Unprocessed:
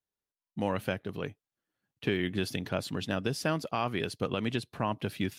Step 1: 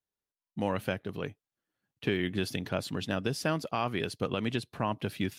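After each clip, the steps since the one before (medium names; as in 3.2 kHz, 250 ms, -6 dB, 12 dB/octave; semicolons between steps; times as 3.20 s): no audible change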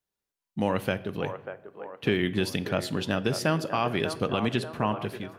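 fade out at the end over 0.52 s; feedback echo behind a band-pass 591 ms, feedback 50%, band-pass 790 Hz, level -7.5 dB; reverberation RT60 0.85 s, pre-delay 5 ms, DRR 14.5 dB; trim +4 dB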